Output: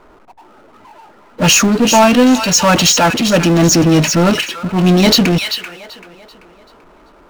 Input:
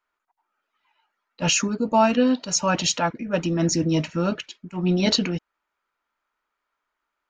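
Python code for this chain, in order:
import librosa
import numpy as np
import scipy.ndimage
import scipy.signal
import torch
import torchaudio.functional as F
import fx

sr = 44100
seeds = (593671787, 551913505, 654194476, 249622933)

y = fx.echo_wet_highpass(x, sr, ms=387, feedback_pct=32, hz=2300.0, wet_db=-8.0)
y = fx.env_lowpass(y, sr, base_hz=480.0, full_db=-20.0)
y = fx.power_curve(y, sr, exponent=0.5)
y = y * librosa.db_to_amplitude(5.0)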